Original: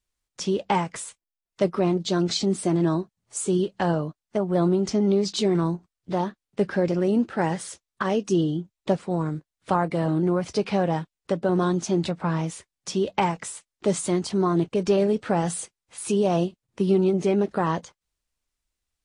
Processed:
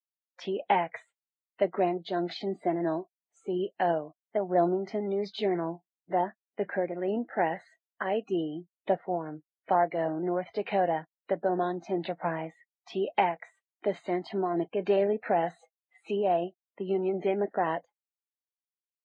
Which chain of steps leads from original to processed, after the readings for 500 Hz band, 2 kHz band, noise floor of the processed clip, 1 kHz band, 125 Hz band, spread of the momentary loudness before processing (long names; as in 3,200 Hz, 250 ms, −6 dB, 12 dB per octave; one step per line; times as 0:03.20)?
−4.0 dB, −2.5 dB, below −85 dBFS, −1.0 dB, −14.5 dB, 9 LU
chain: loudspeaker in its box 300–3,500 Hz, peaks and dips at 700 Hz +9 dB, 1,200 Hz −8 dB, 1,900 Hz +6 dB
noise reduction from a noise print of the clip's start 27 dB
amplitude modulation by smooth noise, depth 55%
level −2 dB